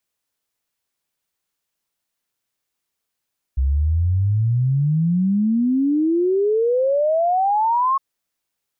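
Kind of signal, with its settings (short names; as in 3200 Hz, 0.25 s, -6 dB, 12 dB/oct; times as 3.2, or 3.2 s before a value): log sweep 64 Hz -> 1100 Hz 4.41 s -15 dBFS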